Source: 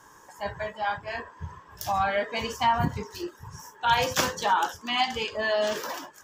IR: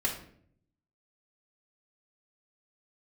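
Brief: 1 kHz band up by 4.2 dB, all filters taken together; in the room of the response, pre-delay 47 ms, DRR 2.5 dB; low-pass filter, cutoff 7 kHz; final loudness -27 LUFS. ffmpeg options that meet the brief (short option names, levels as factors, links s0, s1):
-filter_complex "[0:a]lowpass=7000,equalizer=f=1000:t=o:g=5,asplit=2[s0][s1];[1:a]atrim=start_sample=2205,adelay=47[s2];[s1][s2]afir=irnorm=-1:irlink=0,volume=0.355[s3];[s0][s3]amix=inputs=2:normalize=0,volume=0.631"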